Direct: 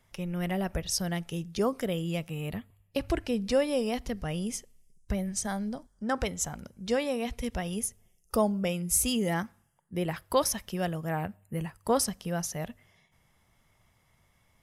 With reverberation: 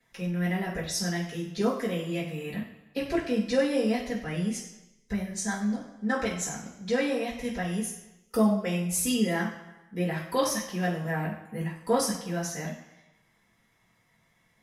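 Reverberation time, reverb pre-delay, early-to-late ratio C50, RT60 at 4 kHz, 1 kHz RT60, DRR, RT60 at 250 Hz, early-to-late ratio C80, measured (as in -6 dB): 1.0 s, 3 ms, 6.0 dB, 0.95 s, 1.0 s, -12.5 dB, 0.90 s, 9.0 dB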